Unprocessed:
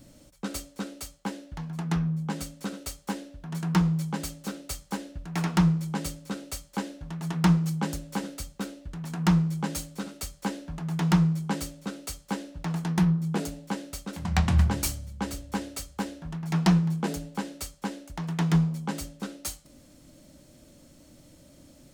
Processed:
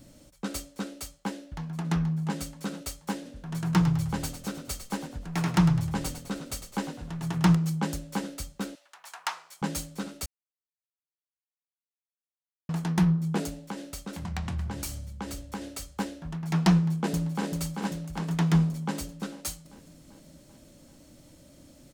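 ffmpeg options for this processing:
-filter_complex "[0:a]asplit=2[a][b];[b]afade=t=in:st=1.36:d=0.01,afade=t=out:st=1.85:d=0.01,aecho=0:1:480|960|1440|1920|2400:0.473151|0.189261|0.0757042|0.0302817|0.0121127[c];[a][c]amix=inputs=2:normalize=0,asettb=1/sr,asplit=3[d][e][f];[d]atrim=end=3.154[g];[e]atrim=start=3.15:end=7.55,asetpts=PTS-STARTPTS,afade=t=in:d=0.004:c=qsin,afade=t=out:st=4.396:d=0.004:c=qsin,asplit=6[h][i][j][k][l][m];[i]adelay=103,afreqshift=-41,volume=-10dB[n];[j]adelay=206,afreqshift=-82,volume=-17.3dB[o];[k]adelay=309,afreqshift=-123,volume=-24.7dB[p];[l]adelay=412,afreqshift=-164,volume=-32dB[q];[m]adelay=515,afreqshift=-205,volume=-39.3dB[r];[h][n][o][p][q][r]amix=inputs=6:normalize=0,atrim=end_sample=194040[s];[f]atrim=start=7.546[t];[g][s]acrossfade=d=0.004:c1=hsin:c2=qsin[u];[u][t]acrossfade=d=0.004:c1=qsin:c2=hsin,asettb=1/sr,asplit=3[v][w][x];[v]atrim=end=8.754[y];[w]atrim=start=8.75:end=9.62,asetpts=PTS-STARTPTS,afade=t=in:d=0.004:c=qsin,afade=t=out:st=0.866:d=0.004:c=qsin,highpass=f=770:w=0.5412,highpass=f=770:w=1.3066[z];[x]atrim=start=9.616[aa];[y][z]acrossfade=d=0.004:c1=hsin:c2=qsin[ab];[ab][aa]acrossfade=d=0.004:c1=qsin:c2=hsin,asettb=1/sr,asplit=3[ac][ad][ae];[ac]atrim=end=13.574[af];[ad]atrim=start=13.57:end=15.94,asetpts=PTS-STARTPTS,afade=t=in:d=0.004:c=qsin,afade=t=out:st=2.366:d=0.004:c=qsin,acompressor=threshold=-32dB:ratio=3:attack=3.2:release=140:knee=1:detection=peak[ag];[ae]atrim=start=15.936[ah];[af][ag]acrossfade=d=0.004:c1=hsin:c2=qsin[ai];[ai][ah]acrossfade=d=0.004:c1=qsin:c2=hsin,asplit=2[aj][ak];[ak]afade=t=in:st=16.74:d=0.01,afade=t=out:st=17.43:d=0.01,aecho=0:1:390|780|1170|1560|1950|2340|2730|3120|3510|3900:0.562341|0.365522|0.237589|0.154433|0.100381|0.0652479|0.0424112|0.0275673|0.0179187|0.0116472[al];[aj][al]amix=inputs=2:normalize=0,asplit=3[am][an][ao];[am]atrim=end=10.26,asetpts=PTS-STARTPTS,afade=t=out:st=10.256:d=0.004:c=hsin[ap];[an]atrim=start=10.26:end=12.69,asetpts=PTS-STARTPTS,volume=0[aq];[ao]atrim=start=12.69,asetpts=PTS-STARTPTS,afade=t=in:d=0.004:c=hsin[ar];[ap][aq][ar]concat=n=3:v=0:a=1"

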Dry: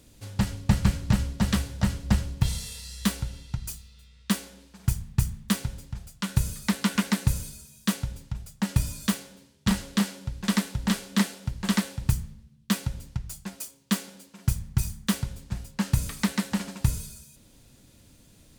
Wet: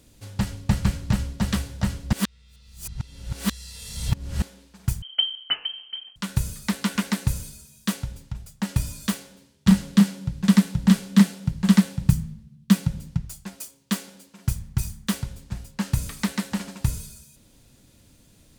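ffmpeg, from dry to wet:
-filter_complex "[0:a]asettb=1/sr,asplit=3[a][b][c];[a]atrim=end=5.024[d];[b]atrim=start=5.02:end=6.16,asetpts=PTS-STARTPTS,afade=t=in:d=0.004:c=qsin,afade=t=out:st=1.136:d=0.004:c=qsin,lowpass=f=2.7k:t=q:w=0.5098,lowpass=f=2.7k:t=q:w=0.6013,lowpass=f=2.7k:t=q:w=0.9,lowpass=f=2.7k:t=q:w=2.563,afreqshift=-3200[e];[c]atrim=start=6.156[f];[d][e]acrossfade=d=0.004:c1=hsin:c2=qsin[g];[g][f]acrossfade=d=0.004:c1=qsin:c2=hsin,asettb=1/sr,asplit=3[h][i][j];[h]atrim=end=9.684[k];[i]atrim=start=9.68:end=13.25,asetpts=PTS-STARTPTS,afade=t=in:d=0.004:c=qsin,afade=t=out:st=3.566:d=0.004:c=qsin,equalizer=f=170:t=o:w=0.77:g=13[l];[j]atrim=start=13.246[m];[k][l]acrossfade=d=0.004:c1=hsin:c2=qsin[n];[n][m]acrossfade=d=0.004:c1=qsin:c2=hsin,asplit=3[o][p][q];[o]atrim=end=2.132[r];[p]atrim=start=2.128:end=4.422,asetpts=PTS-STARTPTS,areverse[s];[q]atrim=start=4.418[t];[r][s]acrossfade=d=0.004:c1=hsin:c2=hsin[u];[u][t]acrossfade=d=0.004:c1=hsin:c2=hsin"

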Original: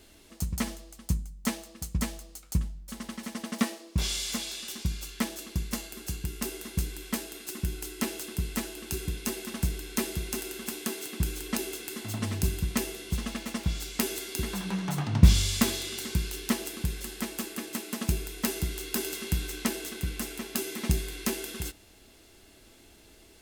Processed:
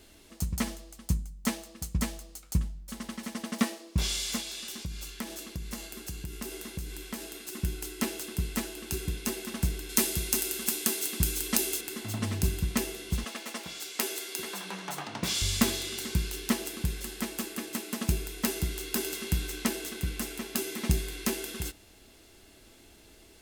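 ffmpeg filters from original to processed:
-filter_complex "[0:a]asettb=1/sr,asplit=3[a][b][c];[a]atrim=end=4.404[d];[b]atrim=start=4.4:end=7.53,asetpts=PTS-STARTPTS,afade=t=in:d=0.004:c=qsin,afade=t=out:st=3.126:d=0.004:c=qsin,acompressor=threshold=-35dB:ratio=2.5:attack=3.2:release=140:knee=1:detection=peak[e];[c]atrim=start=7.526[f];[d][e]acrossfade=d=0.004:c1=hsin:c2=qsin[g];[g][f]acrossfade=d=0.004:c1=qsin:c2=hsin,asettb=1/sr,asplit=3[h][i][j];[h]atrim=end=9.894[k];[i]atrim=start=9.89:end=11.81,asetpts=PTS-STARTPTS,afade=t=in:d=0.004:c=qsin,afade=t=out:st=1.916:d=0.004:c=qsin,highshelf=f=3.8k:g=9.5[l];[j]atrim=start=11.806[m];[k][l]acrossfade=d=0.004:c1=hsin:c2=qsin[n];[n][m]acrossfade=d=0.004:c1=qsin:c2=hsin,asettb=1/sr,asplit=3[o][p][q];[o]atrim=end=13.244[r];[p]atrim=start=13.24:end=15.42,asetpts=PTS-STARTPTS,afade=t=in:d=0.004:c=qsin,afade=t=out:st=2.176:d=0.004:c=qsin,highpass=400[s];[q]atrim=start=15.416[t];[r][s]acrossfade=d=0.004:c1=hsin:c2=qsin[u];[u][t]acrossfade=d=0.004:c1=qsin:c2=hsin"

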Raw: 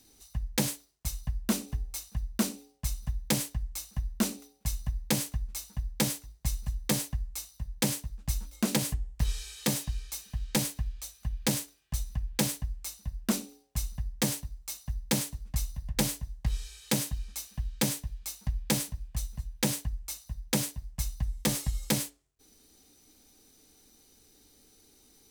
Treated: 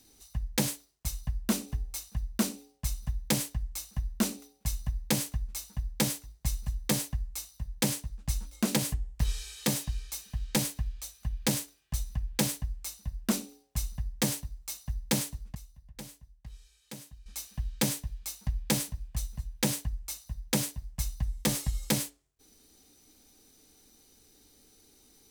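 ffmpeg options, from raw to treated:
-filter_complex "[0:a]asettb=1/sr,asplit=3[a][b][c];[a]atrim=end=7.934[d];[b]atrim=start=7.93:end=8.61,asetpts=PTS-STARTPTS,afade=t=in:d=0.004:c=qsin,afade=t=out:st=0.676:d=0.004:c=qsin,equalizer=f=14k:w=7.7:g=-14[e];[c]atrim=start=8.606[f];[d][e]acrossfade=d=0.004:c1=hsin:c2=qsin[g];[g][f]acrossfade=d=0.004:c1=qsin:c2=hsin,asplit=3[h][i][j];[h]atrim=end=15.55,asetpts=PTS-STARTPTS,afade=t=out:st=15.11:d=0.44:c=log:silence=0.149624[k];[i]atrim=start=15.55:end=17.26,asetpts=PTS-STARTPTS,volume=-16.5dB[l];[j]atrim=start=17.26,asetpts=PTS-STARTPTS,afade=t=in:d=0.44:c=log:silence=0.149624[m];[k][l][m]concat=n=3:v=0:a=1"

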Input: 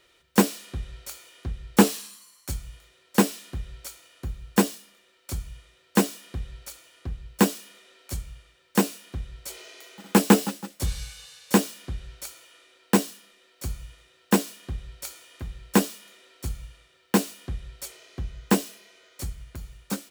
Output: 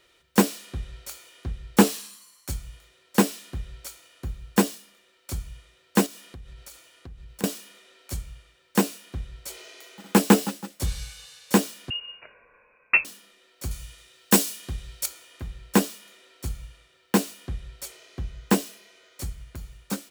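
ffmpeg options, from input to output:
-filter_complex "[0:a]asettb=1/sr,asplit=3[a][b][c];[a]atrim=end=6.064[d];[b]atrim=start=6.06:end=7.44,asetpts=PTS-STARTPTS,afade=t=in:d=0.004:c=qsin,afade=t=out:st=1.376:d=0.004:c=qsin,acompressor=threshold=-40dB:ratio=4:attack=3.2:release=140:knee=1:detection=peak[e];[c]atrim=start=7.436[f];[d][e]acrossfade=d=0.004:c1=hsin:c2=qsin[g];[g][f]acrossfade=d=0.004:c1=qsin:c2=hsin,asettb=1/sr,asplit=3[h][i][j];[h]atrim=end=11.904[k];[i]atrim=start=11.9:end=13.05,asetpts=PTS-STARTPTS,afade=t=in:d=0.004:c=qsin,afade=t=out:st=1.146:d=0.004:c=qsin,lowpass=f=2.5k:t=q:w=0.5098,lowpass=f=2.5k:t=q:w=0.6013,lowpass=f=2.5k:t=q:w=0.9,lowpass=f=2.5k:t=q:w=2.563,afreqshift=-2900[l];[j]atrim=start=13.046[m];[k][l]acrossfade=d=0.004:c1=hsin:c2=qsin[n];[n][m]acrossfade=d=0.004:c1=qsin:c2=hsin,asettb=1/sr,asplit=3[o][p][q];[o]atrim=end=13.714[r];[p]atrim=start=13.71:end=15.06,asetpts=PTS-STARTPTS,afade=t=in:d=0.004:c=qsin,afade=t=out:st=1.346:d=0.004:c=qsin,highshelf=f=3.1k:g=10.5[s];[q]atrim=start=15.056[t];[r][s]acrossfade=d=0.004:c1=hsin:c2=qsin[u];[u][t]acrossfade=d=0.004:c1=qsin:c2=hsin"

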